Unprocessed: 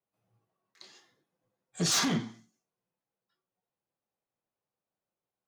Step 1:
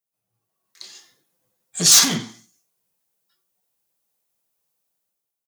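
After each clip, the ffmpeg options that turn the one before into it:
-af "aecho=1:1:91:0.0891,dynaudnorm=f=110:g=11:m=12dB,crystalizer=i=4.5:c=0,volume=-8dB"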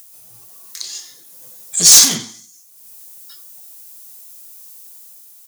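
-af "bass=f=250:g=-3,treble=f=4k:g=13,acompressor=mode=upward:threshold=-21dB:ratio=2.5,asoftclip=type=tanh:threshold=-2.5dB"

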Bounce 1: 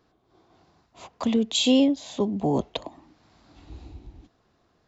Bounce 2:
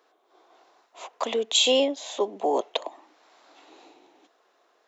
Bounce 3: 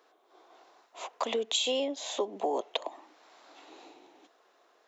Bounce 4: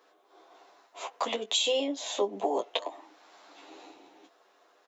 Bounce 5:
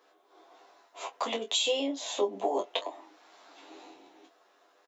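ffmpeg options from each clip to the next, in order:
-af "highpass=f=420:w=0.5412,highpass=f=420:w=1.3066,equalizer=f=4.7k:t=o:w=0.3:g=-5.5,volume=4.5dB"
-af "acompressor=threshold=-27dB:ratio=6"
-af "aecho=1:1:10|25:0.668|0.316"
-filter_complex "[0:a]asplit=2[a][b];[b]adelay=22,volume=-7dB[c];[a][c]amix=inputs=2:normalize=0,volume=-1.5dB"

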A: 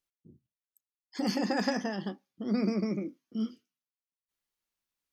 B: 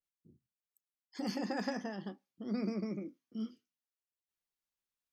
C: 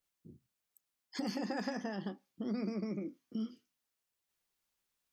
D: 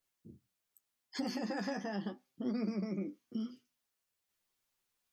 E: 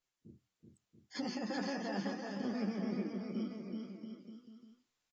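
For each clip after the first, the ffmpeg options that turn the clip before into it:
-af "adynamicequalizer=threshold=0.00501:dfrequency=2300:dqfactor=0.7:tfrequency=2300:tqfactor=0.7:attack=5:release=100:ratio=0.375:range=2:mode=cutabove:tftype=highshelf,volume=-7dB"
-af "acompressor=threshold=-45dB:ratio=3,volume=8dB"
-filter_complex "[0:a]asplit=2[a][b];[b]alimiter=level_in=7.5dB:limit=-24dB:level=0:latency=1,volume=-7.5dB,volume=-2.5dB[c];[a][c]amix=inputs=2:normalize=0,flanger=delay=7.6:depth=3.1:regen=38:speed=0.85:shape=sinusoidal"
-af "aecho=1:1:380|684|927.2|1122|1277:0.631|0.398|0.251|0.158|0.1,volume=-2dB" -ar 24000 -c:a aac -b:a 24k

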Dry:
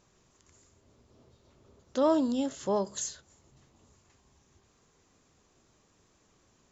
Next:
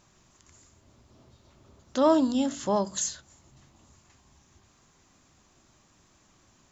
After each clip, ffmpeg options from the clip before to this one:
-af "equalizer=f=450:w=3.5:g=-10,bandreject=f=47.74:t=h:w=4,bandreject=f=95.48:t=h:w=4,bandreject=f=143.22:t=h:w=4,bandreject=f=190.96:t=h:w=4,bandreject=f=238.7:t=h:w=4,bandreject=f=286.44:t=h:w=4,volume=5.5dB"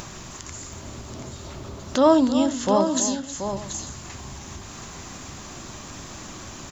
-filter_complex "[0:a]acompressor=mode=upward:threshold=-28dB:ratio=2.5,asplit=2[a][b];[b]aecho=0:1:316|730|853:0.237|0.376|0.112[c];[a][c]amix=inputs=2:normalize=0,volume=5dB"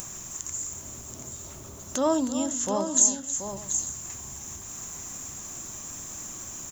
-af "aexciter=amount=12.3:drive=2.4:freq=6.6k,volume=-8dB"

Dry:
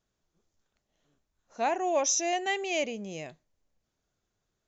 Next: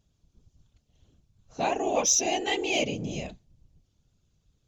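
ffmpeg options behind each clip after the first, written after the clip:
-af "aemphasis=mode=reproduction:type=riaa,aexciter=amount=2.6:drive=9.1:freq=2.6k,afftfilt=real='hypot(re,im)*cos(2*PI*random(0))':imag='hypot(re,im)*sin(2*PI*random(1))':win_size=512:overlap=0.75,volume=5.5dB"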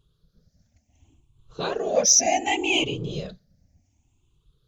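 -af "afftfilt=real='re*pow(10,16/40*sin(2*PI*(0.64*log(max(b,1)*sr/1024/100)/log(2)-(0.67)*(pts-256)/sr)))':imag='im*pow(10,16/40*sin(2*PI*(0.64*log(max(b,1)*sr/1024/100)/log(2)-(0.67)*(pts-256)/sr)))':win_size=1024:overlap=0.75"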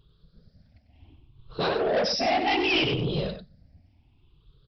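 -af "aresample=11025,asoftclip=type=tanh:threshold=-26.5dB,aresample=44100,aecho=1:1:95:0.376,volume=5.5dB"

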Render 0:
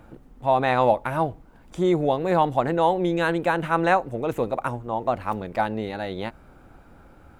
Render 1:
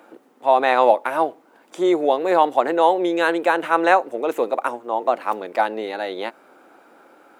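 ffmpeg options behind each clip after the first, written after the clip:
-af "highpass=f=310:w=0.5412,highpass=f=310:w=1.3066,volume=4.5dB"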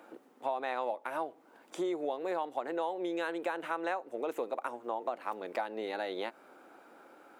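-af "acompressor=threshold=-26dB:ratio=5,volume=-6dB"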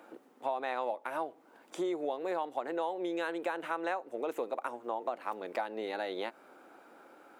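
-af anull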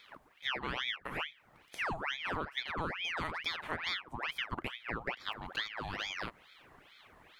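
-af "aeval=exprs='val(0)*sin(2*PI*1600*n/s+1600*0.8/2.3*sin(2*PI*2.3*n/s))':c=same"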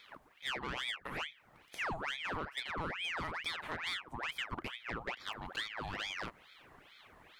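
-af "asoftclip=type=tanh:threshold=-29.5dB"

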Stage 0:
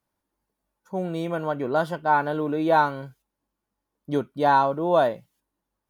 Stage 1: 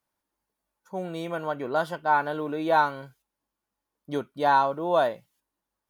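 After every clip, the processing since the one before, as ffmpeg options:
-af "lowshelf=f=490:g=-7.5"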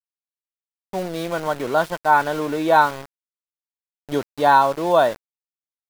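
-af "aeval=exprs='val(0)*gte(abs(val(0)),0.015)':c=same,volume=6.5dB"

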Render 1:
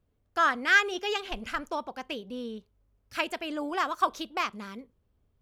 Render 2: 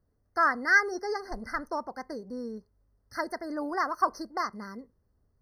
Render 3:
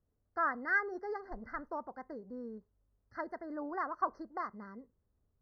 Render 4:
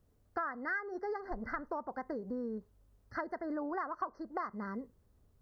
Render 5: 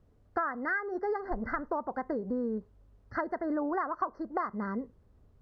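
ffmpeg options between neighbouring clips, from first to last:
-af "afftfilt=real='re*eq(mod(floor(b*sr/1024/2100),2),0)':imag='im*eq(mod(floor(b*sr/1024/2100),2),0)':win_size=1024:overlap=0.75"
-af "lowpass=1.8k,volume=-7dB"
-af "acompressor=threshold=-45dB:ratio=6,volume=10dB"
-af "aemphasis=mode=reproduction:type=75fm,volume=5.5dB"

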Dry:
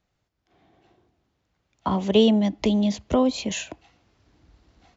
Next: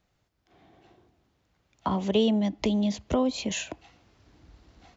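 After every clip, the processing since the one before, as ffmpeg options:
-af "acompressor=threshold=-37dB:ratio=1.5,volume=2.5dB"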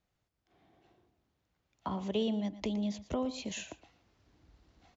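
-af "aecho=1:1:116:0.178,volume=-9dB"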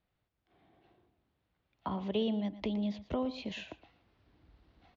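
-af "lowpass=f=4.2k:w=0.5412,lowpass=f=4.2k:w=1.3066"

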